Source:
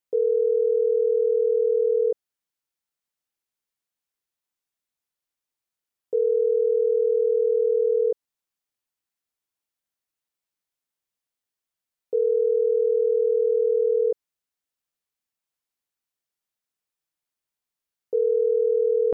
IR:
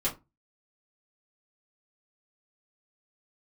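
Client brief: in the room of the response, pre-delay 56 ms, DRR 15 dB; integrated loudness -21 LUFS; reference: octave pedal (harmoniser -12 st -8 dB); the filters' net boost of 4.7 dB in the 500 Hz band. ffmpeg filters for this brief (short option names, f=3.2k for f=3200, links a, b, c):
-filter_complex "[0:a]equalizer=f=500:t=o:g=5,asplit=2[a][b];[1:a]atrim=start_sample=2205,adelay=56[c];[b][c]afir=irnorm=-1:irlink=0,volume=-22dB[d];[a][d]amix=inputs=2:normalize=0,asplit=2[e][f];[f]asetrate=22050,aresample=44100,atempo=2,volume=-8dB[g];[e][g]amix=inputs=2:normalize=0,volume=-4dB"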